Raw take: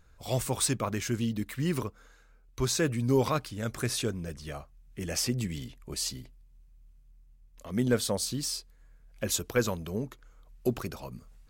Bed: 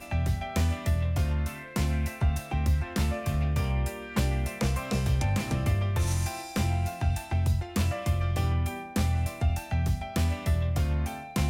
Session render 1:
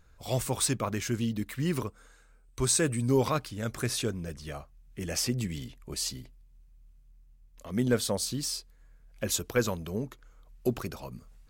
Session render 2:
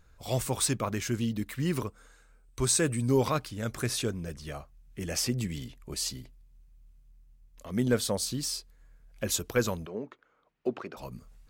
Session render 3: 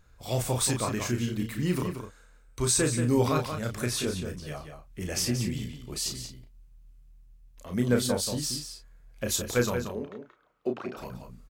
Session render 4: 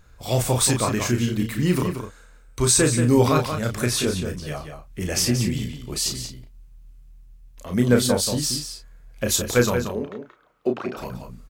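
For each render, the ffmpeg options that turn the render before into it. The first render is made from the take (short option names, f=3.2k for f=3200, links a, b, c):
-filter_complex "[0:a]asettb=1/sr,asplit=3[a][b][c];[a]atrim=end=1.874[d];[b]atrim=start=1.87:end=3.09,asetpts=PTS-STARTPTS,afade=t=in:d=0.004:c=qsin,afade=t=out:st=1.216:d=0.004:c=qsin,equalizer=f=8.4k:t=o:w=0.22:g=15[e];[c]atrim=start=3.086[f];[d][e]acrossfade=d=0.004:c1=hsin:c2=qsin[g];[g][f]acrossfade=d=0.004:c1=qsin:c2=hsin"
-filter_complex "[0:a]asplit=3[a][b][c];[a]afade=t=out:st=9.85:d=0.02[d];[b]highpass=290,lowpass=2.6k,afade=t=in:st=9.85:d=0.02,afade=t=out:st=10.96:d=0.02[e];[c]afade=t=in:st=10.96:d=0.02[f];[d][e][f]amix=inputs=3:normalize=0"
-filter_complex "[0:a]asplit=2[a][b];[b]adelay=33,volume=-5.5dB[c];[a][c]amix=inputs=2:normalize=0,asplit=2[d][e];[e]adelay=180.8,volume=-7dB,highshelf=f=4k:g=-4.07[f];[d][f]amix=inputs=2:normalize=0"
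-af "volume=7dB"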